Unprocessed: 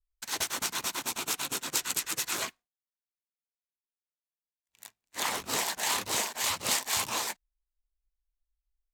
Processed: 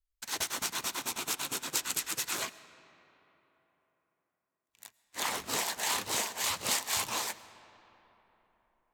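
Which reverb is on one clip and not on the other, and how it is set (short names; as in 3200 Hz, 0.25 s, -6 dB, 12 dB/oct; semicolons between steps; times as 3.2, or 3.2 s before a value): digital reverb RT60 3.9 s, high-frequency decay 0.55×, pre-delay 70 ms, DRR 16 dB; gain -2 dB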